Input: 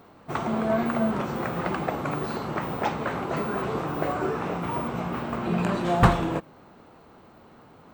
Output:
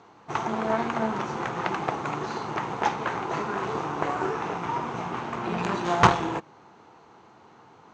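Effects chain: Chebyshev shaper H 4 -10 dB, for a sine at -4.5 dBFS; cabinet simulation 120–6700 Hz, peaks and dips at 170 Hz -5 dB, 250 Hz -7 dB, 580 Hz -7 dB, 900 Hz +5 dB, 6.4 kHz +9 dB

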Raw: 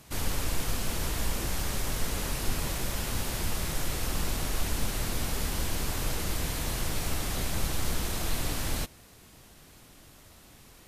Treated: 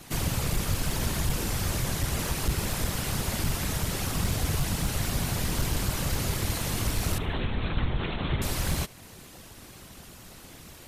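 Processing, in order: in parallel at +1 dB: compression 6:1, threshold -39 dBFS, peak gain reduction 17 dB; on the sum: whisper effect; overload inside the chain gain 19 dB; 7.18–8.42 s: LPC vocoder at 8 kHz whisper; thinning echo 74 ms, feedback 38%, level -24 dB

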